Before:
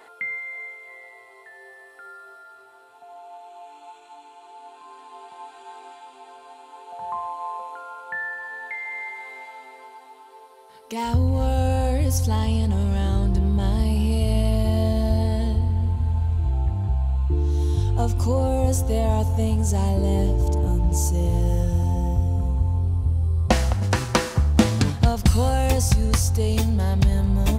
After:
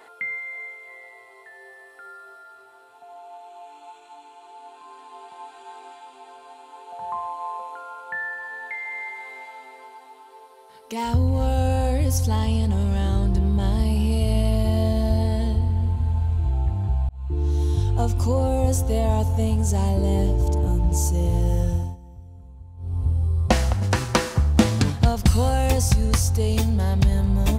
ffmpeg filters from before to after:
-filter_complex "[0:a]asplit=4[s0][s1][s2][s3];[s0]atrim=end=17.09,asetpts=PTS-STARTPTS,afade=t=out:st=17.086:d=0.004:c=hsin[s4];[s1]atrim=start=17.09:end=21.97,asetpts=PTS-STARTPTS,afade=t=in:d=0.38,afade=t=out:st=4.61:d=0.27:silence=0.0891251[s5];[s2]atrim=start=21.97:end=22.77,asetpts=PTS-STARTPTS,volume=0.0891[s6];[s3]atrim=start=22.77,asetpts=PTS-STARTPTS,afade=t=in:d=0.27:silence=0.0891251[s7];[s4][s5][s6][s7]concat=n=4:v=0:a=1"

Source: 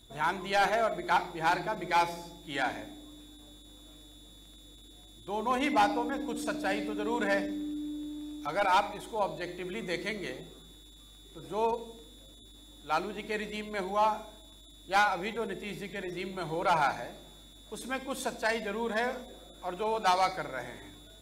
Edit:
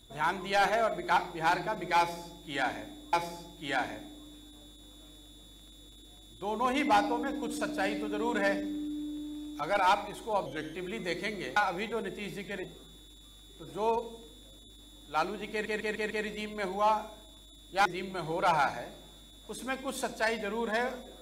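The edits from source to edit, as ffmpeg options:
-filter_complex "[0:a]asplit=11[s0][s1][s2][s3][s4][s5][s6][s7][s8][s9][s10];[s0]atrim=end=3.132[s11];[s1]atrim=start=1.988:end=9.324[s12];[s2]atrim=start=9.32:end=9.57,asetpts=PTS-STARTPTS,asetrate=38808,aresample=44100,atrim=end_sample=12528,asetpts=PTS-STARTPTS[s13];[s3]atrim=start=9.566:end=10.392[s14];[s4]atrim=start=15.008:end=16.082[s15];[s5]atrim=start=10.388:end=13.412[s16];[s6]atrim=start=13.258:end=13.412[s17];[s7]atrim=start=13.258:end=13.412[s18];[s8]atrim=start=13.258:end=13.412[s19];[s9]atrim=start=13.258:end=15.012[s20];[s10]atrim=start=16.078[s21];[s11][s12]acrossfade=d=0.004:c1=hsin:c2=hsin[s22];[s22][s13]acrossfade=d=0.004:c1=hsin:c2=hsin[s23];[s23][s14]acrossfade=d=0.004:c1=hsin:c2=hsin[s24];[s24][s15]acrossfade=d=0.004:c1=hsin:c2=hsin[s25];[s25][s16]acrossfade=d=0.004:c1=hsin:c2=hsin[s26];[s26][s17]acrossfade=d=0.004:c1=hsin:c2=hsin[s27];[s27][s18]acrossfade=d=0.004:c1=hsin:c2=hsin[s28];[s28][s19]acrossfade=d=0.004:c1=hsin:c2=hsin[s29];[s29][s20]acrossfade=d=0.004:c1=hsin:c2=hsin[s30];[s30][s21]acrossfade=d=0.004:c1=hsin:c2=hsin"

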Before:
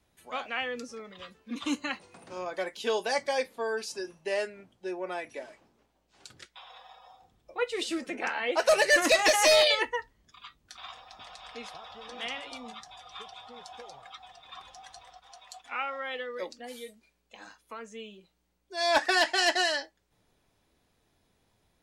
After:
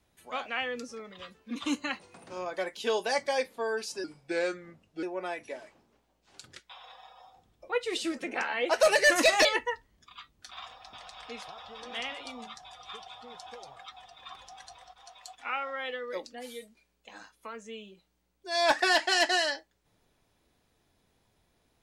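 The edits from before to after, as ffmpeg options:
-filter_complex "[0:a]asplit=4[s0][s1][s2][s3];[s0]atrim=end=4.044[s4];[s1]atrim=start=4.04:end=4.89,asetpts=PTS-STARTPTS,asetrate=37926,aresample=44100,atrim=end_sample=43587,asetpts=PTS-STARTPTS[s5];[s2]atrim=start=4.886:end=9.312[s6];[s3]atrim=start=9.708[s7];[s4][s5]acrossfade=d=0.004:c1=hsin:c2=hsin[s8];[s8][s6]acrossfade=d=0.004:c1=hsin:c2=hsin[s9];[s9][s7]acrossfade=d=0.004:c1=hsin:c2=hsin"

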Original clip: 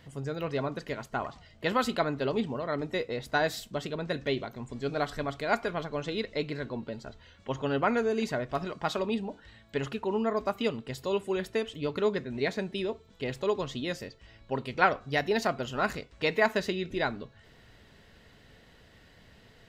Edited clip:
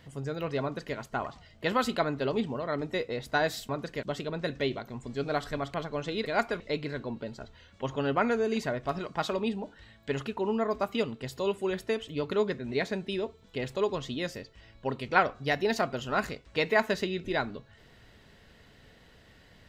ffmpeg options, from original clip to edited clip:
-filter_complex "[0:a]asplit=6[s0][s1][s2][s3][s4][s5];[s0]atrim=end=3.692[s6];[s1]atrim=start=0.618:end=0.962[s7];[s2]atrim=start=3.688:end=5.402[s8];[s3]atrim=start=5.738:end=6.262[s9];[s4]atrim=start=5.398:end=5.742[s10];[s5]atrim=start=6.258[s11];[s6][s7]acrossfade=d=0.004:c1=hsin:c2=hsin[s12];[s12][s8]acrossfade=d=0.004:c1=hsin:c2=hsin[s13];[s13][s9]acrossfade=d=0.004:c1=hsin:c2=hsin[s14];[s14][s10]acrossfade=d=0.004:c1=hsin:c2=hsin[s15];[s15][s11]acrossfade=d=0.004:c1=hsin:c2=hsin"

